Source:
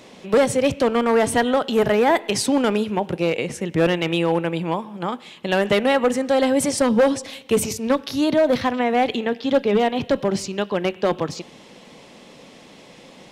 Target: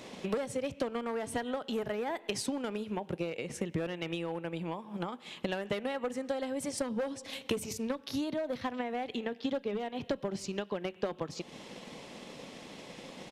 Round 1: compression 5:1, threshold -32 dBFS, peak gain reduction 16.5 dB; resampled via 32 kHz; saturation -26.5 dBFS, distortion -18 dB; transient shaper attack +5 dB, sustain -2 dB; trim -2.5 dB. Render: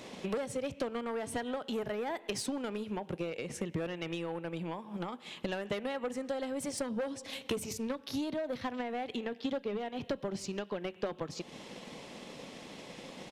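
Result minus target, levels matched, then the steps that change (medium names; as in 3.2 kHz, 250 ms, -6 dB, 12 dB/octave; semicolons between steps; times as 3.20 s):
saturation: distortion +10 dB
change: saturation -20 dBFS, distortion -28 dB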